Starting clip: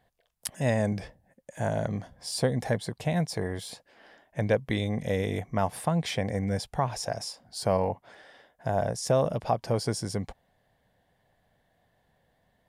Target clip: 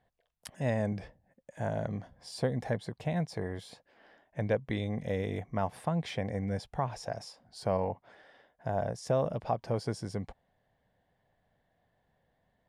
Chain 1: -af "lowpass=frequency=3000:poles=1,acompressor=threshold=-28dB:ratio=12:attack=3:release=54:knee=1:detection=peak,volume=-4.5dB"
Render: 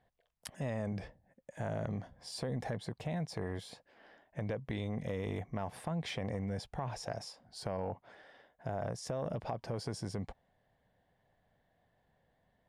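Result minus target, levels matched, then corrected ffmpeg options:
downward compressor: peak gain reduction +11 dB
-af "lowpass=frequency=3000:poles=1,volume=-4.5dB"

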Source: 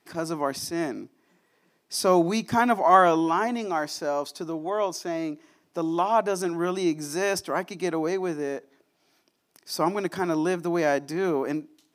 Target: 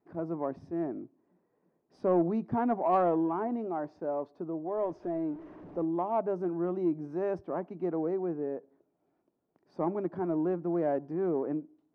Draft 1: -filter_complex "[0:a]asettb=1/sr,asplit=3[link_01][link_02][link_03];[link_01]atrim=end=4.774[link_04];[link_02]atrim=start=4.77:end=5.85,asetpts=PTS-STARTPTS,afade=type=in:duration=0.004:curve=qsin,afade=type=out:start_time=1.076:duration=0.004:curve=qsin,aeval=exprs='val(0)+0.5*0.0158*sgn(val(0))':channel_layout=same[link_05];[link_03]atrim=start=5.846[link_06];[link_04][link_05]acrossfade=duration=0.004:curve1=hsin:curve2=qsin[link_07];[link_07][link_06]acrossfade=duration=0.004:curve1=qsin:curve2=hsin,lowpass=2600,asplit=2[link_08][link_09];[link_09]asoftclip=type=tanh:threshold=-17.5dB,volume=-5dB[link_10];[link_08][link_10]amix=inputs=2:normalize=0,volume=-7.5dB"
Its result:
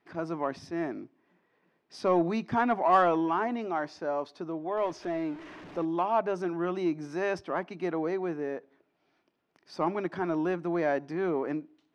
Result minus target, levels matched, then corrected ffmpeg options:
2,000 Hz band +12.0 dB
-filter_complex "[0:a]asettb=1/sr,asplit=3[link_01][link_02][link_03];[link_01]atrim=end=4.774[link_04];[link_02]atrim=start=4.77:end=5.85,asetpts=PTS-STARTPTS,afade=type=in:duration=0.004:curve=qsin,afade=type=out:start_time=1.076:duration=0.004:curve=qsin,aeval=exprs='val(0)+0.5*0.0158*sgn(val(0))':channel_layout=same[link_05];[link_03]atrim=start=5.846[link_06];[link_04][link_05]acrossfade=duration=0.004:curve1=hsin:curve2=qsin[link_07];[link_07][link_06]acrossfade=duration=0.004:curve1=qsin:curve2=hsin,lowpass=710,asplit=2[link_08][link_09];[link_09]asoftclip=type=tanh:threshold=-17.5dB,volume=-5dB[link_10];[link_08][link_10]amix=inputs=2:normalize=0,volume=-7.5dB"

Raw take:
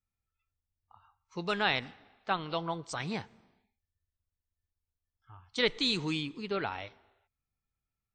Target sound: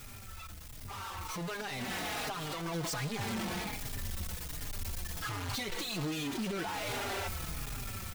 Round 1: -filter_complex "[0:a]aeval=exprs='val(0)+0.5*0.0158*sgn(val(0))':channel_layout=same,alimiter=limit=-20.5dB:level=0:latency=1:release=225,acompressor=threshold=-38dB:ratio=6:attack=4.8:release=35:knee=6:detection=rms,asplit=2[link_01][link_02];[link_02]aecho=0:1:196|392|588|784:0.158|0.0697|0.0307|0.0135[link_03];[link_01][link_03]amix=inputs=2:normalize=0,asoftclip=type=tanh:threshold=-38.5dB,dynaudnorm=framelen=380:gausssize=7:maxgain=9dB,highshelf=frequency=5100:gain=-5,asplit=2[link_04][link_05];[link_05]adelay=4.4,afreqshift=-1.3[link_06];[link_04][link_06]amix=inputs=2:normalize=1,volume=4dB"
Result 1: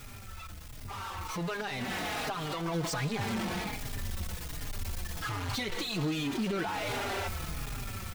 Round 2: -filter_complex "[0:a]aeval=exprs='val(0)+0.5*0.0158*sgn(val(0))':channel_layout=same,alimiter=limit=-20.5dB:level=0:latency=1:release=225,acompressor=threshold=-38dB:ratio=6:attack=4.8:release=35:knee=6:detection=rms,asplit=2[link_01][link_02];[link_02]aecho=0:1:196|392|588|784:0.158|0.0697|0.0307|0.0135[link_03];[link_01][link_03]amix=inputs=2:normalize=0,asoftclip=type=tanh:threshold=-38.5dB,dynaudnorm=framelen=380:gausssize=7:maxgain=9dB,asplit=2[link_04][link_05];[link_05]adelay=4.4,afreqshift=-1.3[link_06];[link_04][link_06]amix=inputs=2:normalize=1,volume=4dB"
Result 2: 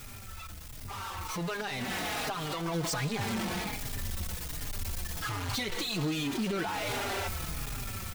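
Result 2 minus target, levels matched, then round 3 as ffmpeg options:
soft clipping: distortion −5 dB
-filter_complex "[0:a]aeval=exprs='val(0)+0.5*0.0158*sgn(val(0))':channel_layout=same,alimiter=limit=-20.5dB:level=0:latency=1:release=225,acompressor=threshold=-38dB:ratio=6:attack=4.8:release=35:knee=6:detection=rms,asplit=2[link_01][link_02];[link_02]aecho=0:1:196|392|588|784:0.158|0.0697|0.0307|0.0135[link_03];[link_01][link_03]amix=inputs=2:normalize=0,asoftclip=type=tanh:threshold=-45dB,dynaudnorm=framelen=380:gausssize=7:maxgain=9dB,asplit=2[link_04][link_05];[link_05]adelay=4.4,afreqshift=-1.3[link_06];[link_04][link_06]amix=inputs=2:normalize=1,volume=4dB"

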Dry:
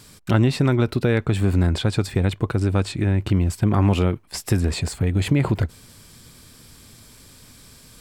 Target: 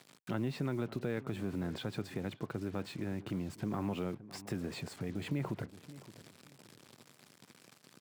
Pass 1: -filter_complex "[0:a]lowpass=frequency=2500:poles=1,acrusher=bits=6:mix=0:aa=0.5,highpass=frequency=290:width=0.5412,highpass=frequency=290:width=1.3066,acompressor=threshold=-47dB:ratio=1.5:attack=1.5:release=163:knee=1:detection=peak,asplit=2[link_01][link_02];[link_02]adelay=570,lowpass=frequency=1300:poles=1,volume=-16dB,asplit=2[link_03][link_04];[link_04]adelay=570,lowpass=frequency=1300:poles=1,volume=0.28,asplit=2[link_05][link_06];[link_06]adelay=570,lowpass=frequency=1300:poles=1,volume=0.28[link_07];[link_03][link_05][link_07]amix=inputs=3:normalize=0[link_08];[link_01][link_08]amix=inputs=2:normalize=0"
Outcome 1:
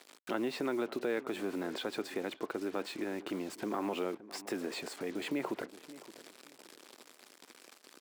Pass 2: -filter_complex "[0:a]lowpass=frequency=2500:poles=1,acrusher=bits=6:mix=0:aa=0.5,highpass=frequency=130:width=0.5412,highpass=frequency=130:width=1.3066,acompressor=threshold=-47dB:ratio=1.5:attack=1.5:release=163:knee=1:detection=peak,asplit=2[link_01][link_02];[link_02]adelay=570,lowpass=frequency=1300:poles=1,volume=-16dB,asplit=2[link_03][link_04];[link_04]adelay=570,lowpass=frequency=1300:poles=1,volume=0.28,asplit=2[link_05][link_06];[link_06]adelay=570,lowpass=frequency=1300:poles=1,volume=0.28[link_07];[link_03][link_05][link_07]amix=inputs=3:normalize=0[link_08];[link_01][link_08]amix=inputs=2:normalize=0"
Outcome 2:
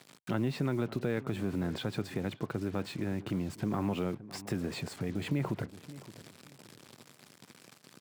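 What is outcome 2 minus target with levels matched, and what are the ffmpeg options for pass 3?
downward compressor: peak gain reduction −4 dB
-filter_complex "[0:a]lowpass=frequency=2500:poles=1,acrusher=bits=6:mix=0:aa=0.5,highpass=frequency=130:width=0.5412,highpass=frequency=130:width=1.3066,acompressor=threshold=-59dB:ratio=1.5:attack=1.5:release=163:knee=1:detection=peak,asplit=2[link_01][link_02];[link_02]adelay=570,lowpass=frequency=1300:poles=1,volume=-16dB,asplit=2[link_03][link_04];[link_04]adelay=570,lowpass=frequency=1300:poles=1,volume=0.28,asplit=2[link_05][link_06];[link_06]adelay=570,lowpass=frequency=1300:poles=1,volume=0.28[link_07];[link_03][link_05][link_07]amix=inputs=3:normalize=0[link_08];[link_01][link_08]amix=inputs=2:normalize=0"

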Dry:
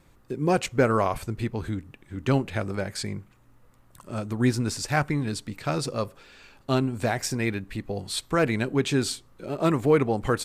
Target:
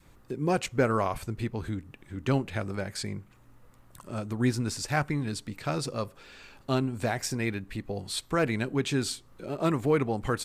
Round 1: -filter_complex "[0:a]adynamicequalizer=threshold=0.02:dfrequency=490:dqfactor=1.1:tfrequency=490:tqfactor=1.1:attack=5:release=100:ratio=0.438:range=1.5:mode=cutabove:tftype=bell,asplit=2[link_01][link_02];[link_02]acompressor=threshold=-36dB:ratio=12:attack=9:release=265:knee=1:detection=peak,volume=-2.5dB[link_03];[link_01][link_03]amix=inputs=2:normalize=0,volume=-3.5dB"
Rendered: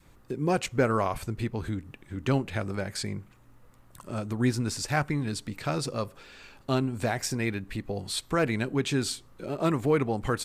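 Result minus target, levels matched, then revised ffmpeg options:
downward compressor: peak gain reduction −10 dB
-filter_complex "[0:a]adynamicequalizer=threshold=0.02:dfrequency=490:dqfactor=1.1:tfrequency=490:tqfactor=1.1:attack=5:release=100:ratio=0.438:range=1.5:mode=cutabove:tftype=bell,asplit=2[link_01][link_02];[link_02]acompressor=threshold=-47dB:ratio=12:attack=9:release=265:knee=1:detection=peak,volume=-2.5dB[link_03];[link_01][link_03]amix=inputs=2:normalize=0,volume=-3.5dB"

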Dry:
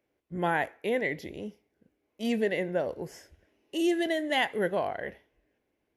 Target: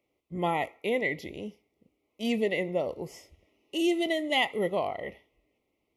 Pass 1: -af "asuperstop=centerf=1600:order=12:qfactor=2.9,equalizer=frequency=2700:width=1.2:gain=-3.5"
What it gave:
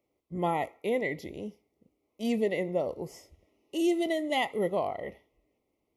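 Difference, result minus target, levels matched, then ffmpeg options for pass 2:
2,000 Hz band −3.5 dB
-af "asuperstop=centerf=1600:order=12:qfactor=2.9,equalizer=frequency=2700:width=1.2:gain=3.5"

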